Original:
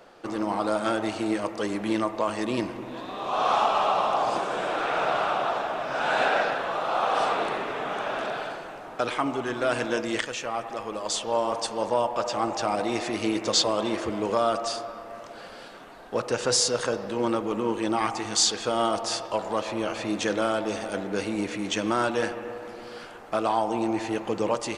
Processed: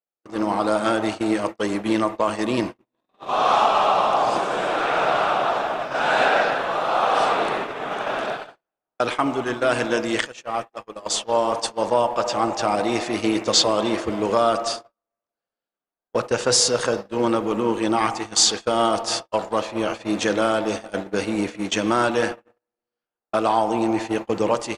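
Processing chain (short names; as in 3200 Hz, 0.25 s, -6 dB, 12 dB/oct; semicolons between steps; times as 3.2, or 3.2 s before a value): gate -30 dBFS, range -53 dB; gain +5 dB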